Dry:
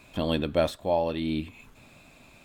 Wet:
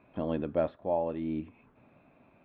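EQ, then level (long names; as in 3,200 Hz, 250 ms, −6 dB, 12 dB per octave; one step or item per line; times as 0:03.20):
high-pass filter 240 Hz 6 dB per octave
high-frequency loss of the air 450 metres
head-to-tape spacing loss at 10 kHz 35 dB
0.0 dB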